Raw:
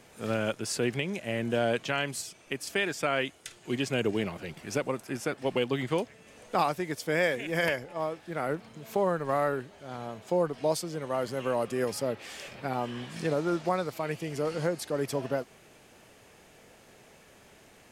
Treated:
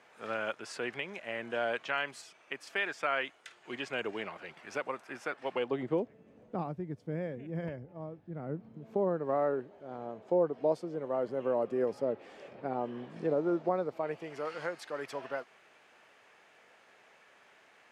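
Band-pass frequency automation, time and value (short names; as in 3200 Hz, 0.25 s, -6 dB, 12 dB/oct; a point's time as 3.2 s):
band-pass, Q 0.88
5.51 s 1300 Hz
5.87 s 380 Hz
6.83 s 130 Hz
8.36 s 130 Hz
9.37 s 440 Hz
13.89 s 440 Hz
14.49 s 1500 Hz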